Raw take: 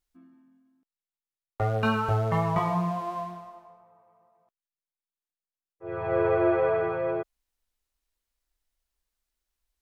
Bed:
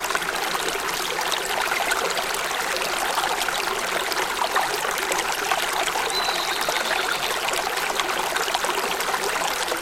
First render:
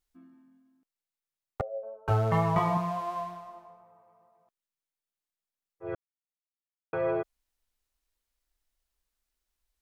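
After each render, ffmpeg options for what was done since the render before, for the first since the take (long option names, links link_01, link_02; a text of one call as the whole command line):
ffmpeg -i in.wav -filter_complex "[0:a]asettb=1/sr,asplit=3[link_01][link_02][link_03];[link_01]atrim=end=1.614[link_04];[link_02]atrim=start=1.61:end=2.08,asetpts=PTS-STARTPTS,afade=type=in:duration=0.004:curve=qsin,afade=type=out:start_time=0.466:duration=0.004:curve=qsin,asuperpass=centerf=570:order=4:qfactor=6[link_05];[link_03]atrim=start=2.076[link_06];[link_04][link_05]acrossfade=duration=0.004:curve1=hsin:curve2=qsin[link_07];[link_07][link_06]acrossfade=duration=0.004:curve1=qsin:curve2=hsin,asettb=1/sr,asplit=3[link_08][link_09][link_10];[link_08]atrim=end=2.774[link_11];[link_09]atrim=start=2.77:end=3.49,asetpts=PTS-STARTPTS,afade=type=in:duration=0.004:curve=qsin,afade=type=out:start_time=0.716:duration=0.004:curve=qsin,equalizer=frequency=250:width=1.5:gain=-12.5[link_12];[link_10]atrim=start=3.486[link_13];[link_11][link_12]acrossfade=duration=0.004:curve1=hsin:curve2=qsin[link_14];[link_14][link_13]acrossfade=duration=0.004:curve1=qsin:curve2=hsin,asplit=3[link_15][link_16][link_17];[link_15]atrim=end=5.95,asetpts=PTS-STARTPTS,afade=type=out:start_time=5.946:duration=0.004:curve=hsin[link_18];[link_16]atrim=start=5.95:end=6.93,asetpts=PTS-STARTPTS,volume=0[link_19];[link_17]atrim=start=6.93,asetpts=PTS-STARTPTS,afade=type=in:duration=0.004:curve=hsin[link_20];[link_18][link_19][link_20]concat=n=3:v=0:a=1" out.wav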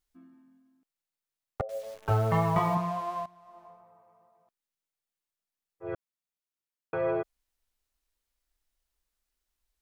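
ffmpeg -i in.wav -filter_complex "[0:a]asettb=1/sr,asplit=3[link_01][link_02][link_03];[link_01]atrim=end=1.694[link_04];[link_02]atrim=start=1.69:end=2.75,asetpts=PTS-STARTPTS,afade=type=in:duration=0.004:curve=qsin,afade=type=out:start_time=1.056:duration=0.004:curve=qsin,acrusher=bits=9:dc=4:mix=0:aa=0.000001[link_05];[link_03]atrim=start=2.746[link_06];[link_04][link_05]acrossfade=duration=0.004:curve1=hsin:curve2=qsin[link_07];[link_07][link_06]acrossfade=duration=0.004:curve1=qsin:curve2=hsin,asplit=2[link_08][link_09];[link_08]atrim=end=3.26,asetpts=PTS-STARTPTS,afade=type=out:start_time=3.256:duration=0.004:curve=hsin:silence=0.149624[link_10];[link_09]atrim=start=3.26,asetpts=PTS-STARTPTS,afade=type=in:duration=0.4:curve=qua:silence=0.149624[link_11];[link_10][link_11]concat=n=2:v=0:a=1" out.wav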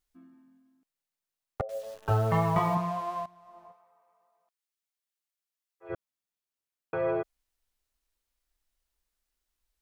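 ffmpeg -i in.wav -filter_complex "[0:a]asettb=1/sr,asplit=3[link_01][link_02][link_03];[link_01]atrim=end=1.744[link_04];[link_02]atrim=start=1.74:end=2.28,asetpts=PTS-STARTPTS,afade=type=in:duration=0.004:curve=qsin,afade=type=out:start_time=0.536:duration=0.004:curve=qsin,bandreject=frequency=2200:width=7.3[link_05];[link_03]atrim=start=2.276[link_06];[link_04][link_05]acrossfade=duration=0.004:curve1=hsin:curve2=qsin[link_07];[link_07][link_06]acrossfade=duration=0.004:curve1=qsin:curve2=hsin,asplit=3[link_08][link_09][link_10];[link_08]afade=type=out:start_time=3.71:duration=0.02[link_11];[link_09]highpass=frequency=1400:poles=1,afade=type=in:start_time=3.71:duration=0.02,afade=type=out:start_time=5.89:duration=0.02[link_12];[link_10]afade=type=in:start_time=5.89:duration=0.02[link_13];[link_11][link_12][link_13]amix=inputs=3:normalize=0" out.wav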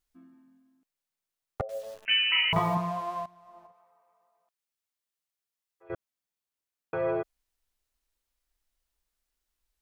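ffmpeg -i in.wav -filter_complex "[0:a]asettb=1/sr,asplit=3[link_01][link_02][link_03];[link_01]atrim=end=2.054[link_04];[link_02]atrim=start=2.05:end=2.53,asetpts=PTS-STARTPTS,afade=type=in:duration=0.004:curve=qsin,afade=type=out:start_time=0.476:duration=0.004:curve=qsin,lowpass=frequency=2600:width_type=q:width=0.5098,lowpass=frequency=2600:width_type=q:width=0.6013,lowpass=frequency=2600:width_type=q:width=0.9,lowpass=frequency=2600:width_type=q:width=2.563,afreqshift=-3100[link_05];[link_03]atrim=start=2.526[link_06];[link_04][link_05]acrossfade=duration=0.004:curve1=hsin:curve2=qsin[link_07];[link_07][link_06]acrossfade=duration=0.004:curve1=qsin:curve2=hsin,asettb=1/sr,asplit=3[link_08][link_09][link_10];[link_08]atrim=end=3.664[link_11];[link_09]atrim=start=3.66:end=5.9,asetpts=PTS-STARTPTS,afade=type=in:duration=0.004:curve=qsin,afade=type=out:start_time=2.236:duration=0.004:curve=qsin,acompressor=threshold=-57dB:ratio=2:attack=3.2:release=140:knee=1:detection=peak[link_12];[link_10]atrim=start=5.896[link_13];[link_11][link_12]acrossfade=duration=0.004:curve1=hsin:curve2=qsin[link_14];[link_14][link_13]acrossfade=duration=0.004:curve1=qsin:curve2=hsin" out.wav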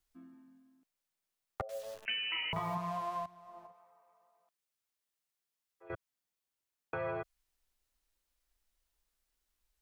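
ffmpeg -i in.wav -filter_complex "[0:a]acrossover=split=150|760[link_01][link_02][link_03];[link_01]acompressor=threshold=-46dB:ratio=4[link_04];[link_02]acompressor=threshold=-45dB:ratio=4[link_05];[link_03]acompressor=threshold=-37dB:ratio=4[link_06];[link_04][link_05][link_06]amix=inputs=3:normalize=0" out.wav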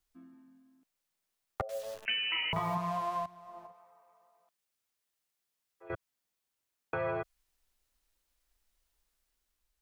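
ffmpeg -i in.wav -af "dynaudnorm=framelen=290:gausssize=5:maxgain=3.5dB" out.wav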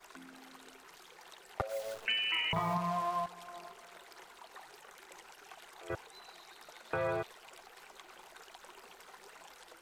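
ffmpeg -i in.wav -i bed.wav -filter_complex "[1:a]volume=-30.5dB[link_01];[0:a][link_01]amix=inputs=2:normalize=0" out.wav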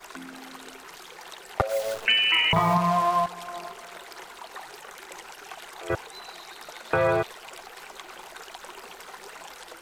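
ffmpeg -i in.wav -af "volume=11.5dB" out.wav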